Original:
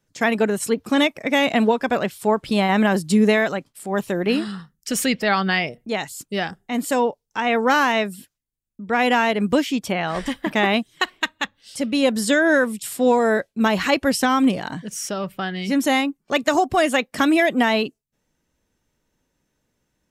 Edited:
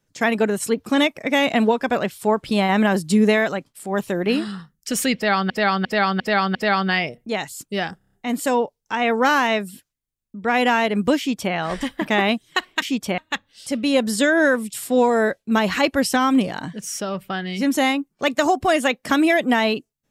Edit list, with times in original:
0:05.15–0:05.50: repeat, 5 plays
0:06.58: stutter 0.03 s, 6 plays
0:09.63–0:09.99: duplicate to 0:11.27

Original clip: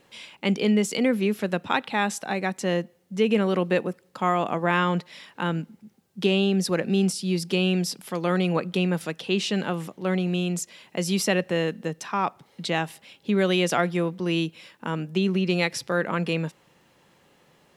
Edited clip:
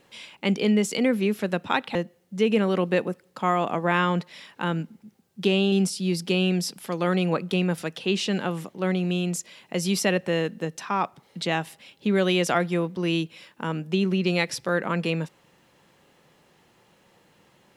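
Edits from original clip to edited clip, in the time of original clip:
0:01.95–0:02.74: remove
0:06.51–0:06.95: remove

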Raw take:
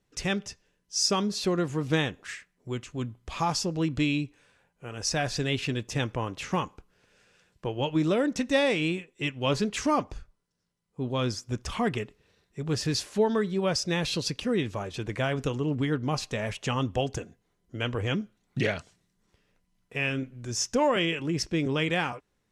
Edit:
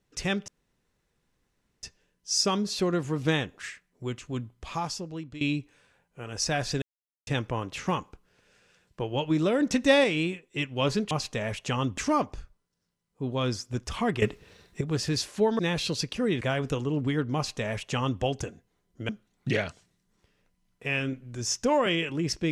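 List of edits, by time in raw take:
0:00.48: splice in room tone 1.35 s
0:02.97–0:04.06: fade out, to −17 dB
0:05.47–0:05.92: silence
0:08.26–0:08.69: clip gain +3.5 dB
0:12.00–0:12.59: clip gain +11.5 dB
0:13.37–0:13.86: remove
0:14.68–0:15.15: remove
0:16.09–0:16.96: duplicate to 0:09.76
0:17.83–0:18.19: remove

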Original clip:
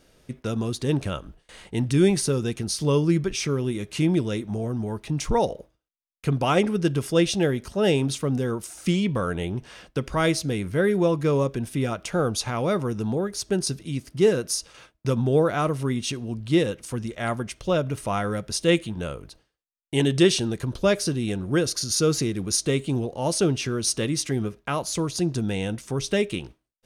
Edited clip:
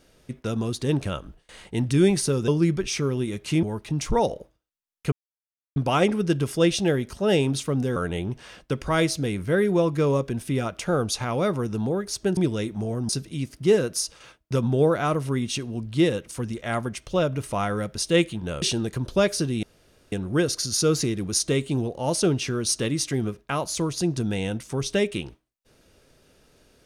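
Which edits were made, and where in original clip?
0:02.48–0:02.95: remove
0:04.10–0:04.82: move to 0:13.63
0:06.31: splice in silence 0.64 s
0:08.51–0:09.22: remove
0:19.16–0:20.29: remove
0:21.30: splice in room tone 0.49 s

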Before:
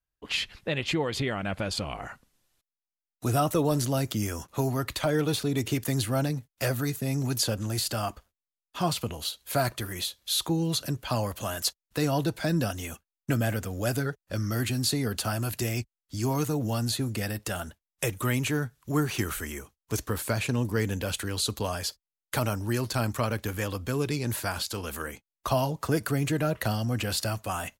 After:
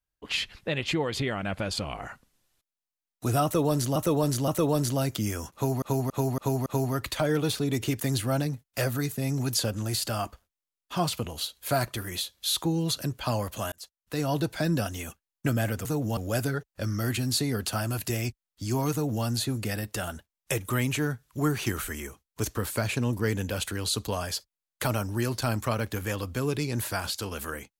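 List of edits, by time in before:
0:03.44–0:03.96: repeat, 3 plays
0:04.50–0:04.78: repeat, 5 plays
0:11.56–0:12.22: fade in
0:16.44–0:16.76: duplicate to 0:13.69

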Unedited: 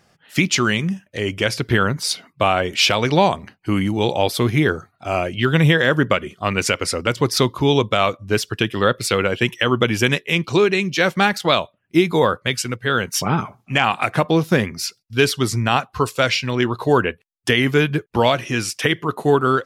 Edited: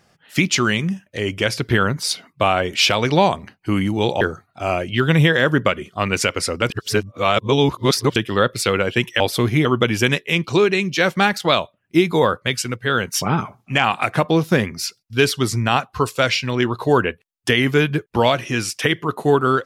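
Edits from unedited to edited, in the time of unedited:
0:04.21–0:04.66: move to 0:09.65
0:07.15–0:08.61: reverse

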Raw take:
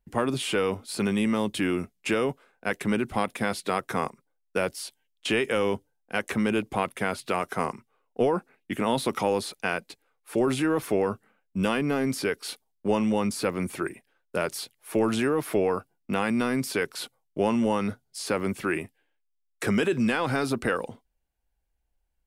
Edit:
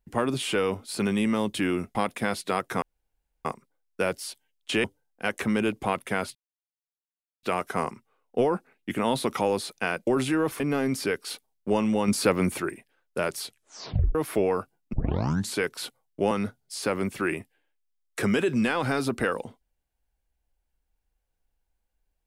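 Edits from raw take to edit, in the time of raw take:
0:01.95–0:03.14: remove
0:04.01: splice in room tone 0.63 s
0:05.40–0:05.74: remove
0:07.25: splice in silence 1.08 s
0:09.89–0:10.38: remove
0:10.91–0:11.78: remove
0:13.26–0:13.78: clip gain +5 dB
0:14.63: tape stop 0.70 s
0:16.11: tape start 0.64 s
0:17.49–0:17.75: remove

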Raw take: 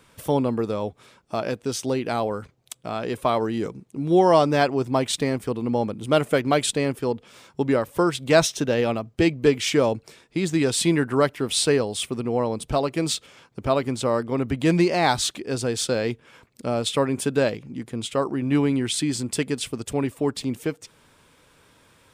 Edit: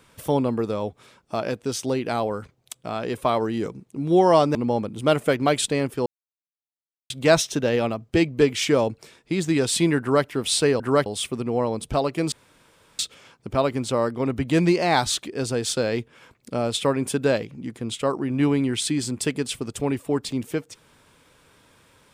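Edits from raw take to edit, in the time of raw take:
0:04.55–0:05.60: remove
0:07.11–0:08.15: silence
0:11.05–0:11.31: duplicate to 0:11.85
0:13.11: splice in room tone 0.67 s

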